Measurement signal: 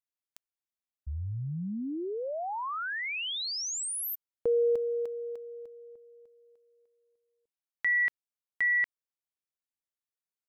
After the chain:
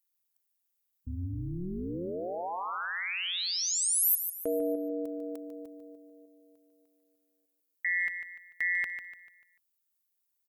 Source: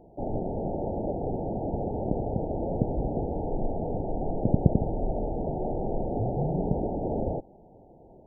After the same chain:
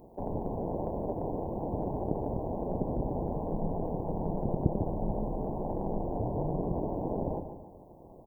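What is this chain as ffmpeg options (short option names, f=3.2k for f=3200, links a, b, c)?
-filter_complex "[0:a]aemphasis=mode=production:type=50fm,asplit=2[a][b];[b]acompressor=threshold=-35dB:ratio=6:attack=1.3:release=81:knee=1:detection=peak,volume=1dB[c];[a][c]amix=inputs=2:normalize=0,tremolo=f=180:d=1,aecho=1:1:147|294|441|588|735:0.355|0.145|0.0596|0.0245|0.01,volume=-2.5dB" -ar 48000 -c:a libvorbis -b:a 192k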